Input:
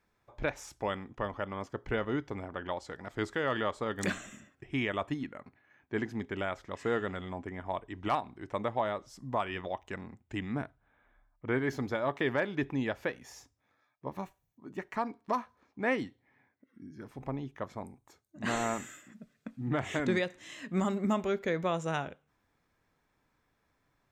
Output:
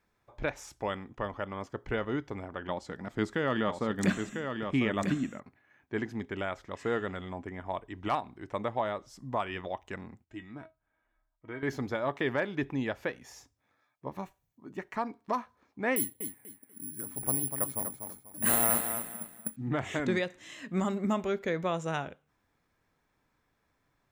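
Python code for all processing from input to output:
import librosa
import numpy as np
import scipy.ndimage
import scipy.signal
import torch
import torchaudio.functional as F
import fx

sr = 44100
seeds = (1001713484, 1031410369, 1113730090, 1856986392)

y = fx.chain(x, sr, fx.peak_eq(hz=200.0, db=8.5, octaves=1.1),
    fx.echo_single(ms=998, db=-6.0), at=(2.68, 5.4))
y = fx.chain(y, sr, fx.lowpass(hz=8200.0, slope=12),
    fx.comb_fb(f0_hz=320.0, decay_s=0.17, harmonics='all', damping=0.0, mix_pct=80), at=(10.24, 11.63))
y = fx.chain(y, sr, fx.echo_feedback(ms=244, feedback_pct=28, wet_db=-7.5),
    fx.resample_bad(factor=4, down='filtered', up='zero_stuff'), at=(15.96, 19.56))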